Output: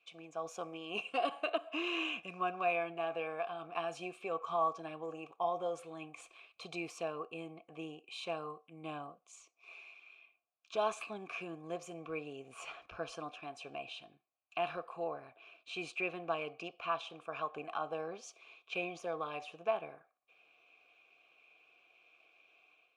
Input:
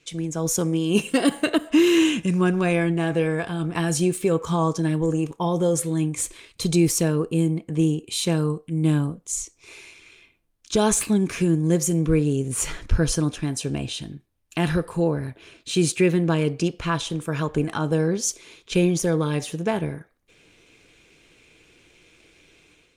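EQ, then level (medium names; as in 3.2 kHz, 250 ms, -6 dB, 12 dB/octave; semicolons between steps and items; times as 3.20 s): vowel filter a; tilt shelf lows -6.5 dB, about 870 Hz; treble shelf 5.2 kHz -12 dB; +1.0 dB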